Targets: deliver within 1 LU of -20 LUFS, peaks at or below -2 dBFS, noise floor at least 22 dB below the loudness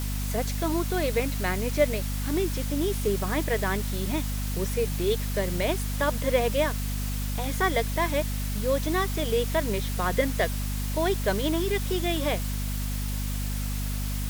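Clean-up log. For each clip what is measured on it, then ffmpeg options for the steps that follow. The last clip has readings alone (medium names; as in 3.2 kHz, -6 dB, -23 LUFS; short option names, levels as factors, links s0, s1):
hum 50 Hz; highest harmonic 250 Hz; hum level -27 dBFS; noise floor -29 dBFS; noise floor target -50 dBFS; loudness -27.5 LUFS; peak level -10.0 dBFS; loudness target -20.0 LUFS
-> -af "bandreject=f=50:t=h:w=6,bandreject=f=100:t=h:w=6,bandreject=f=150:t=h:w=6,bandreject=f=200:t=h:w=6,bandreject=f=250:t=h:w=6"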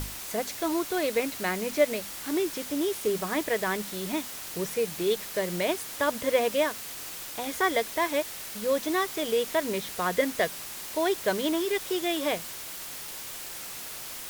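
hum not found; noise floor -39 dBFS; noise floor target -51 dBFS
-> -af "afftdn=nr=12:nf=-39"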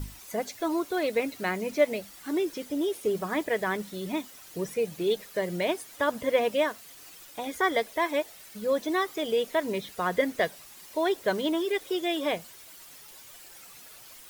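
noise floor -49 dBFS; noise floor target -51 dBFS
-> -af "afftdn=nr=6:nf=-49"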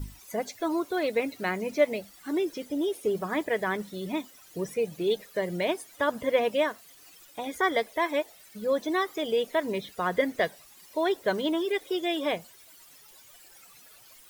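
noise floor -54 dBFS; loudness -29.5 LUFS; peak level -10.5 dBFS; loudness target -20.0 LUFS
-> -af "volume=2.99,alimiter=limit=0.794:level=0:latency=1"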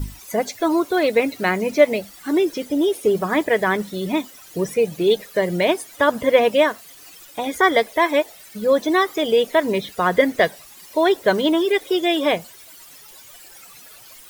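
loudness -20.0 LUFS; peak level -2.0 dBFS; noise floor -44 dBFS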